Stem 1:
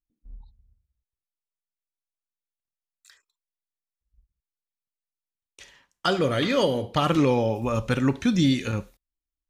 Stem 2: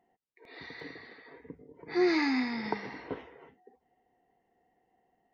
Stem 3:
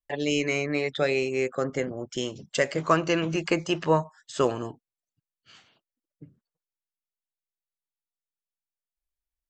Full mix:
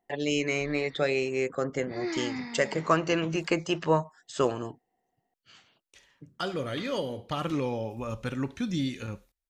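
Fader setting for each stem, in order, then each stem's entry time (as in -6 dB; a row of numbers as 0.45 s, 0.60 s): -9.0 dB, -6.0 dB, -2.0 dB; 0.35 s, 0.00 s, 0.00 s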